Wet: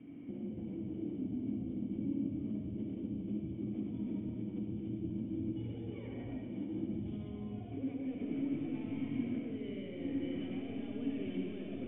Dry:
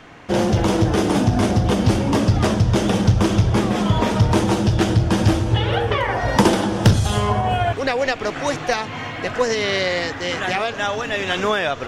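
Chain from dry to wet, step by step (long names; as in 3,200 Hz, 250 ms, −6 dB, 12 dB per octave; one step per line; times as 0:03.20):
high-pass filter 92 Hz
high-shelf EQ 2,100 Hz −10 dB
compressor whose output falls as the input rises −27 dBFS, ratio −1
soft clipping −19.5 dBFS, distortion −15 dB
formant resonators in series i
high-frequency loss of the air 430 metres
on a send: delay with a high-pass on its return 200 ms, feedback 82%, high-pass 3,300 Hz, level −4.5 dB
on the sum: comb and all-pass reverb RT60 1.6 s, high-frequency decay 0.85×, pre-delay 30 ms, DRR −0.5 dB
level −4 dB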